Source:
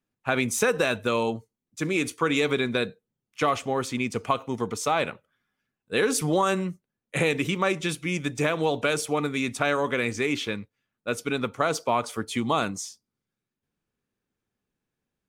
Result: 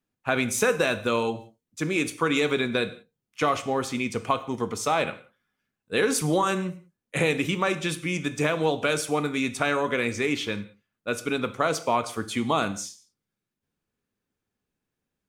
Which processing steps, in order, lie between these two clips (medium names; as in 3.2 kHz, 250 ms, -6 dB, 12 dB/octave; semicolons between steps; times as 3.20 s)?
gated-style reverb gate 210 ms falling, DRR 11 dB